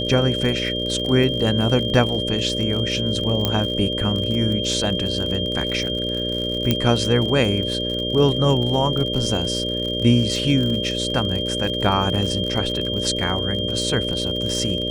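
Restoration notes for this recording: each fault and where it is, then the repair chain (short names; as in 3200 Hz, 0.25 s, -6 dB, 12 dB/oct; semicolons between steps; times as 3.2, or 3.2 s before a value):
buzz 60 Hz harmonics 10 -27 dBFS
crackle 55/s -26 dBFS
tone 3200 Hz -25 dBFS
3.45 pop -5 dBFS
6.71 pop -4 dBFS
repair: de-click; de-hum 60 Hz, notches 10; notch 3200 Hz, Q 30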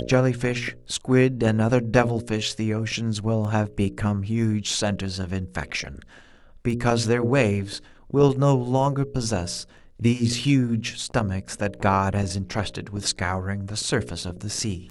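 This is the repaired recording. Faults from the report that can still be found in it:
3.45 pop
6.71 pop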